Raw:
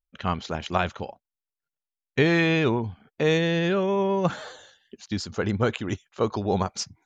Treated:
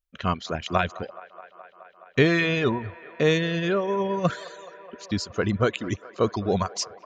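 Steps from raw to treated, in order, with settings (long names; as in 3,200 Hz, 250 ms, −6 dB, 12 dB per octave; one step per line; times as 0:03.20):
Butterworth band-reject 840 Hz, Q 6.1
reverb reduction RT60 1.1 s
delay with a band-pass on its return 211 ms, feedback 81%, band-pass 1,000 Hz, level −17.5 dB
level +2 dB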